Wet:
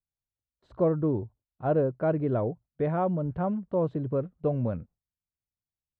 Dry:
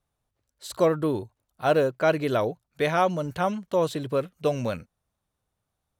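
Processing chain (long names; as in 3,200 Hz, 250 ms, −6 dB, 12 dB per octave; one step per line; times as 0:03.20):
noise gate with hold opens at −41 dBFS
low-pass filter 1,100 Hz 12 dB per octave
low-shelf EQ 320 Hz +12 dB
level −7 dB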